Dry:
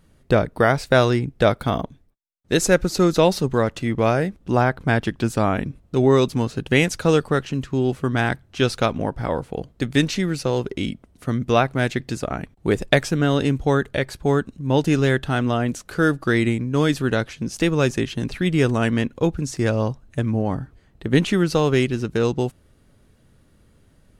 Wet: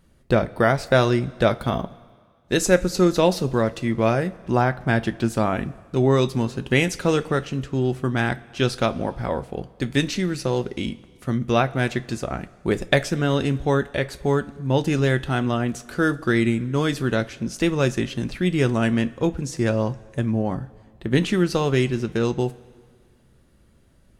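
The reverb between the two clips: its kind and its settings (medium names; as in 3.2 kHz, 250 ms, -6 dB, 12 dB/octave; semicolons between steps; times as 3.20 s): two-slope reverb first 0.22 s, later 1.9 s, from -18 dB, DRR 9.5 dB; trim -2 dB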